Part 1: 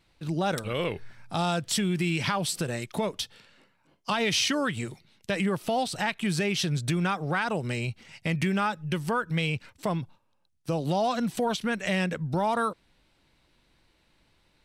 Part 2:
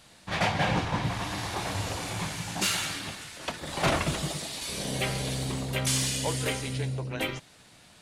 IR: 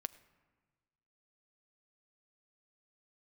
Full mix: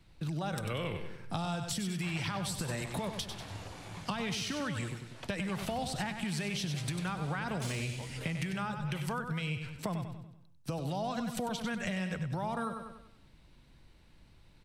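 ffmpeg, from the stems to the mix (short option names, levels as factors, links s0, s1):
-filter_complex "[0:a]bass=f=250:g=9,treble=f=4000:g=2,acompressor=threshold=0.0631:ratio=6,highshelf=f=5300:g=7.5,volume=1,asplit=2[s0][s1];[s1]volume=0.355[s2];[1:a]acrossover=split=160|3000[s3][s4][s5];[s4]acompressor=threshold=0.0178:ratio=6[s6];[s3][s6][s5]amix=inputs=3:normalize=0,aeval=exprs='0.188*(cos(1*acos(clip(val(0)/0.188,-1,1)))-cos(1*PI/2))+0.0376*(cos(3*acos(clip(val(0)/0.188,-1,1)))-cos(3*PI/2))':c=same,adelay=1750,volume=0.75[s7];[s2]aecho=0:1:96|192|288|384|480|576:1|0.41|0.168|0.0689|0.0283|0.0116[s8];[s0][s7][s8]amix=inputs=3:normalize=0,highshelf=f=4000:g=-9.5,acrossover=split=150|560[s9][s10][s11];[s9]acompressor=threshold=0.00891:ratio=4[s12];[s10]acompressor=threshold=0.00794:ratio=4[s13];[s11]acompressor=threshold=0.0158:ratio=4[s14];[s12][s13][s14]amix=inputs=3:normalize=0"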